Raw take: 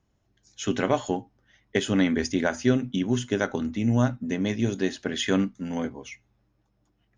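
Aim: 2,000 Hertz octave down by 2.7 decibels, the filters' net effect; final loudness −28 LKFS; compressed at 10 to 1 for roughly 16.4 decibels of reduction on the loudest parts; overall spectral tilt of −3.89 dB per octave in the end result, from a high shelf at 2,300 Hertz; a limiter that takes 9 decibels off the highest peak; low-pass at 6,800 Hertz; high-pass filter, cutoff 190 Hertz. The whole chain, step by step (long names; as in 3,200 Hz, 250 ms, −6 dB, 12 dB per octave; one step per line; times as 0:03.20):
high-pass filter 190 Hz
low-pass filter 6,800 Hz
parametric band 2,000 Hz −7.5 dB
high-shelf EQ 2,300 Hz +8 dB
downward compressor 10 to 1, threshold −34 dBFS
level +12.5 dB
brickwall limiter −16 dBFS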